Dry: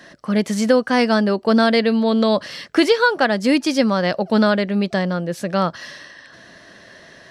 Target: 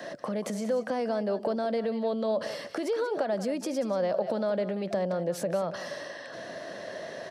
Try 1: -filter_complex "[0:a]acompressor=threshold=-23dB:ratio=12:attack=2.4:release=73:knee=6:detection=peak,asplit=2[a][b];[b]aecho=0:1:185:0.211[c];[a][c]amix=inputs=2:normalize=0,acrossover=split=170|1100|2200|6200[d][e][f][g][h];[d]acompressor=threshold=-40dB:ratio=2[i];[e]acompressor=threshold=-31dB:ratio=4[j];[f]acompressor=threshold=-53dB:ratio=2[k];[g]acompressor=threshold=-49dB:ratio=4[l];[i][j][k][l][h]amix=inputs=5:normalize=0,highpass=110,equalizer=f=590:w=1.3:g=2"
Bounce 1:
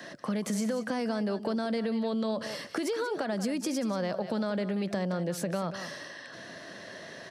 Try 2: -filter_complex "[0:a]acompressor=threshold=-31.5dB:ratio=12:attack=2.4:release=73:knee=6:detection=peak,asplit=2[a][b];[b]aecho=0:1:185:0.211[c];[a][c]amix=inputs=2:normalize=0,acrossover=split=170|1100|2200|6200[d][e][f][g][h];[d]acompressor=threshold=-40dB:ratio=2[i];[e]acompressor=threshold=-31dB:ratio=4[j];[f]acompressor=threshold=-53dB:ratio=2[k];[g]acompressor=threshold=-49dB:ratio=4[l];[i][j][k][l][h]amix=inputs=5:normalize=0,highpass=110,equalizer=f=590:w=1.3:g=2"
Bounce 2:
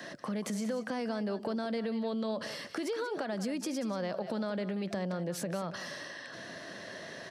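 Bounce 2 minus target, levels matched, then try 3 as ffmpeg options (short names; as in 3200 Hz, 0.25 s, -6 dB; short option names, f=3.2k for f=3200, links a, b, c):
500 Hz band -3.0 dB
-filter_complex "[0:a]acompressor=threshold=-31.5dB:ratio=12:attack=2.4:release=73:knee=6:detection=peak,asplit=2[a][b];[b]aecho=0:1:185:0.211[c];[a][c]amix=inputs=2:normalize=0,acrossover=split=170|1100|2200|6200[d][e][f][g][h];[d]acompressor=threshold=-40dB:ratio=2[i];[e]acompressor=threshold=-31dB:ratio=4[j];[f]acompressor=threshold=-53dB:ratio=2[k];[g]acompressor=threshold=-49dB:ratio=4[l];[i][j][k][l][h]amix=inputs=5:normalize=0,highpass=110,equalizer=f=590:w=1.3:g=12"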